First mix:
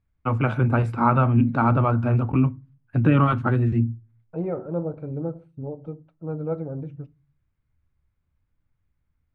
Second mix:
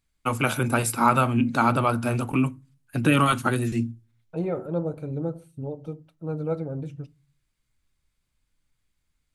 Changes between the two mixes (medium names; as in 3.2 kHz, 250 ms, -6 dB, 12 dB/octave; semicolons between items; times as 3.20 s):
first voice: add peaking EQ 82 Hz -12 dB 1.4 oct; master: remove low-pass 1.6 kHz 12 dB/octave